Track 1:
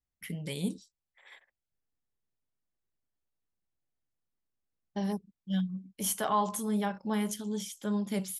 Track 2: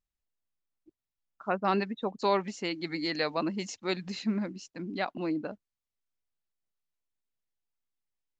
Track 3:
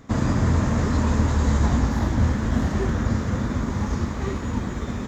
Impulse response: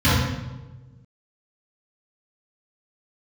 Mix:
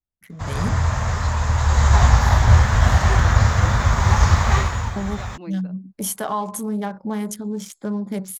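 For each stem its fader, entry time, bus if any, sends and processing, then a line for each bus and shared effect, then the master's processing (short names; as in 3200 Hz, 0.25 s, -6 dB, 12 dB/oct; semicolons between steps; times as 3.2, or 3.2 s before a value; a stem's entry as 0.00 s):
-1.5 dB, 0.00 s, bus A, no send, Wiener smoothing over 15 samples; bell 2800 Hz -3.5 dB
-17.5 dB, 0.20 s, bus A, no send, dry
+1.0 dB, 0.30 s, no bus, no send, EQ curve 110 Hz 0 dB, 280 Hz -21 dB, 730 Hz +2 dB; auto duck -12 dB, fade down 0.40 s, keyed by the first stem
bus A: 0.0 dB, compressor 2:1, threshold -40 dBFS, peak gain reduction 8.5 dB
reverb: off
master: AGC gain up to 13 dB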